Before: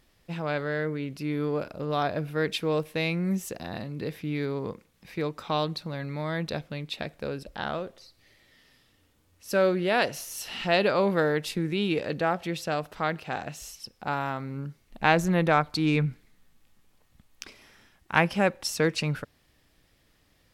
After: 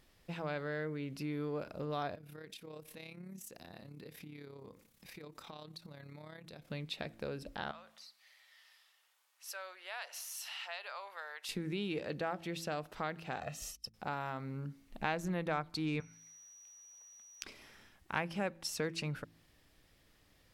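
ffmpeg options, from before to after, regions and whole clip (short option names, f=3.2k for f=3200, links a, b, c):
-filter_complex "[0:a]asettb=1/sr,asplit=3[a][b][c];[a]atrim=end=2.154[d];[b]atrim=start=2.15:end=6.7,asetpts=PTS-STARTPTS,afade=t=in:d=0.004:c=qsin,afade=t=out:st=4.546:d=0.004:c=qsin,aemphasis=mode=production:type=cd,acompressor=threshold=-43dB:ratio=5:attack=3.2:release=140:knee=1:detection=peak,tremolo=f=34:d=0.621[e];[c]atrim=start=6.696[f];[d][e]acrossfade=d=0.004:c1=hsin:c2=qsin[g];[g][f]acrossfade=d=0.004:c1=qsin:c2=hsin,asettb=1/sr,asplit=3[h][i][j];[h]atrim=end=7.714[k];[i]atrim=start=7.71:end=11.49,asetpts=PTS-STARTPTS,afade=t=in:d=0.004:c=qsin,afade=t=out:st=3.776:d=0.004:c=qsin,acompressor=threshold=-40dB:ratio=2:attack=3.2:release=140:knee=1:detection=peak,highpass=f=800:w=0.5412,highpass=f=800:w=1.3066[l];[j]atrim=start=11.486[m];[k][l]acrossfade=d=0.004:c1=hsin:c2=qsin[n];[n][m]acrossfade=d=0.004:c1=qsin:c2=hsin,asettb=1/sr,asplit=3[o][p][q];[o]atrim=end=13.404[r];[p]atrim=start=13.4:end=13.94,asetpts=PTS-STARTPTS,afade=t=in:d=0.004:c=qsin,afade=t=out:st=0.536:d=0.004:c=qsin,agate=range=-34dB:threshold=-45dB:ratio=16:release=100:detection=peak,aecho=1:1:1.6:0.66,atrim=end_sample=23814[s];[q]atrim=start=13.936[t];[r][s]acrossfade=d=0.004:c1=hsin:c2=qsin[u];[u][t]acrossfade=d=0.004:c1=qsin:c2=hsin,asettb=1/sr,asplit=3[v][w][x];[v]atrim=end=16.004[y];[w]atrim=start=16:end=17.43,asetpts=PTS-STARTPTS,afade=t=in:d=0.004:c=qsin,afade=t=out:st=1.426:d=0.004:c=qsin,highpass=730,aeval=exprs='val(0)+0.00251*sin(2*PI*5800*n/s)':c=same[z];[x]atrim=start=17.426[aa];[y][z]acrossfade=d=0.004:c1=hsin:c2=qsin[ab];[ab][aa]acrossfade=d=0.004:c1=qsin:c2=hsin,bandreject=f=55.17:t=h:w=4,bandreject=f=110.34:t=h:w=4,bandreject=f=165.51:t=h:w=4,bandreject=f=220.68:t=h:w=4,bandreject=f=275.85:t=h:w=4,bandreject=f=331.02:t=h:w=4,acompressor=threshold=-38dB:ratio=2,volume=-2.5dB"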